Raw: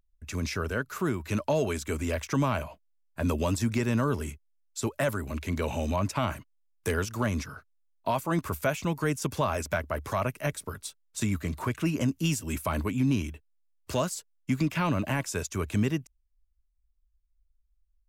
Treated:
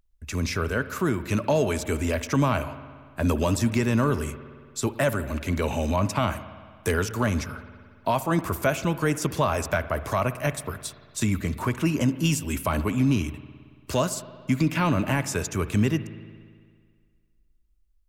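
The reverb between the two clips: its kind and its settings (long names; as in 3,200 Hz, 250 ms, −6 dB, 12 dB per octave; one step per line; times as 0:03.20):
spring reverb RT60 1.9 s, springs 56 ms, chirp 30 ms, DRR 13 dB
level +4 dB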